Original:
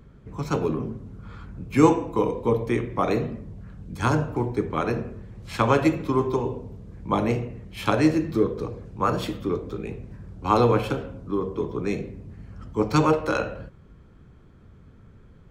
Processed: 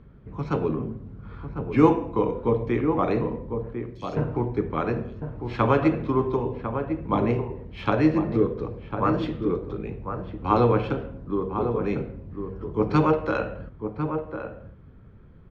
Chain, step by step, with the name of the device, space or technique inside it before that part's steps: 3.73–4.17 s: inverse Chebyshev high-pass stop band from 1.6 kHz, stop band 40 dB; shout across a valley (distance through air 250 m; echo from a far wall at 180 m, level -7 dB)

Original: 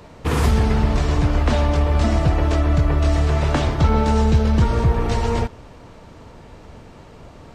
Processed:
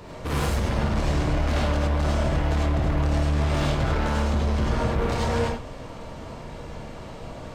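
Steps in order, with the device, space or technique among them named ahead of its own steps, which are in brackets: saturation between pre-emphasis and de-emphasis (treble shelf 5.6 kHz +6.5 dB; saturation -26 dBFS, distortion -6 dB; treble shelf 5.6 kHz -6.5 dB); gated-style reverb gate 120 ms rising, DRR -3.5 dB

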